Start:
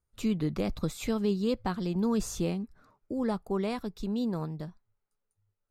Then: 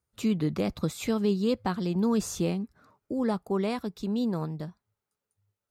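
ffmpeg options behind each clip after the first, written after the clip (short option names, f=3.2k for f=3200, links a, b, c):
-af "highpass=79,volume=2.5dB"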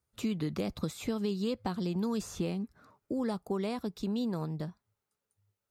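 -filter_complex "[0:a]acrossover=split=1100|3000[a][b][c];[a]acompressor=threshold=-30dB:ratio=4[d];[b]acompressor=threshold=-50dB:ratio=4[e];[c]acompressor=threshold=-46dB:ratio=4[f];[d][e][f]amix=inputs=3:normalize=0"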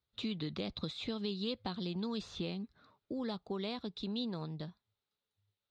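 -af "lowpass=f=3.8k:t=q:w=4.7,volume=-6dB"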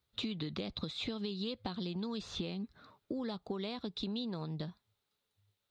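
-af "acompressor=threshold=-41dB:ratio=6,volume=6dB"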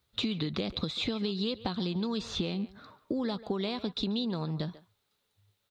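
-filter_complex "[0:a]asplit=2[a][b];[b]adelay=140,highpass=300,lowpass=3.4k,asoftclip=type=hard:threshold=-32dB,volume=-15dB[c];[a][c]amix=inputs=2:normalize=0,volume=6.5dB"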